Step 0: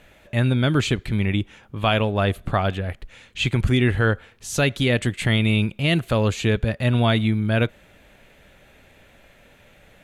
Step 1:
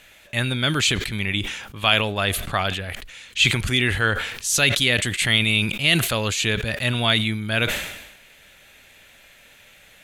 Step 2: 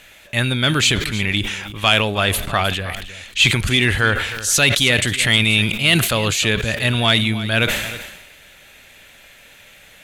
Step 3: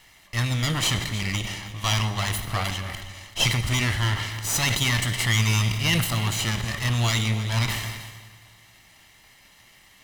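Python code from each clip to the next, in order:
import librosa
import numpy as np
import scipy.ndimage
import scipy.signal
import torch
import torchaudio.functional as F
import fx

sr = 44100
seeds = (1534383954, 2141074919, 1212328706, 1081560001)

y1 = fx.tilt_shelf(x, sr, db=-8.5, hz=1400.0)
y1 = fx.sustainer(y1, sr, db_per_s=57.0)
y1 = y1 * 10.0 ** (1.5 / 20.0)
y2 = 10.0 ** (-7.0 / 20.0) * np.tanh(y1 / 10.0 ** (-7.0 / 20.0))
y2 = y2 + 10.0 ** (-15.0 / 20.0) * np.pad(y2, (int(313 * sr / 1000.0), 0))[:len(y2)]
y2 = y2 * 10.0 ** (4.5 / 20.0)
y3 = fx.lower_of_two(y2, sr, delay_ms=0.99)
y3 = fx.rev_fdn(y3, sr, rt60_s=1.9, lf_ratio=1.0, hf_ratio=0.85, size_ms=51.0, drr_db=9.5)
y3 = y3 * 10.0 ** (-6.5 / 20.0)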